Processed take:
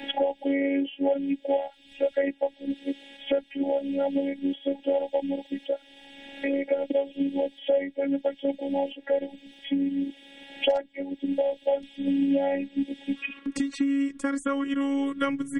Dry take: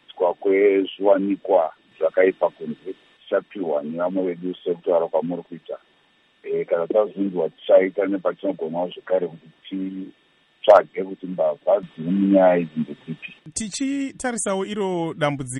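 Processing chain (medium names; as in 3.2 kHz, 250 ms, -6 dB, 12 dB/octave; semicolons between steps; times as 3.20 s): robot voice 278 Hz; Butterworth band-stop 1.2 kHz, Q 1.5, from 13.15 s 700 Hz; three bands compressed up and down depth 100%; trim -3.5 dB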